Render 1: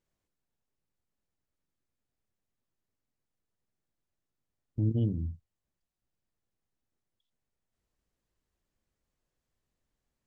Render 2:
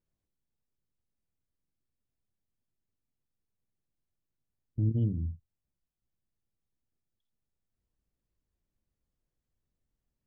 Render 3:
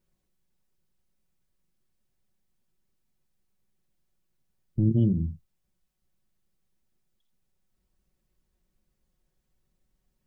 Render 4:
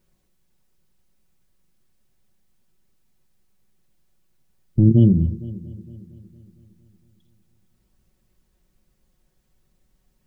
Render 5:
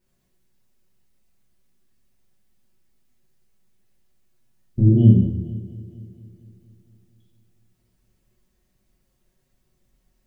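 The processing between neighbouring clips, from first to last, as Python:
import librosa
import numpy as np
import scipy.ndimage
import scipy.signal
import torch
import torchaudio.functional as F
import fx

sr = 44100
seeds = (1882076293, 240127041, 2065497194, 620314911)

y1 = fx.low_shelf(x, sr, hz=380.0, db=10.5)
y1 = F.gain(torch.from_numpy(y1), -9.0).numpy()
y2 = y1 + 0.54 * np.pad(y1, (int(5.4 * sr / 1000.0), 0))[:len(y1)]
y2 = F.gain(torch.from_numpy(y2), 7.5).numpy()
y3 = fx.echo_heads(y2, sr, ms=230, heads='first and second', feedback_pct=49, wet_db=-21.5)
y3 = F.gain(torch.from_numpy(y3), 9.0).numpy()
y4 = fx.rev_plate(y3, sr, seeds[0], rt60_s=0.77, hf_ratio=0.95, predelay_ms=0, drr_db=-5.5)
y4 = F.gain(torch.from_numpy(y4), -7.0).numpy()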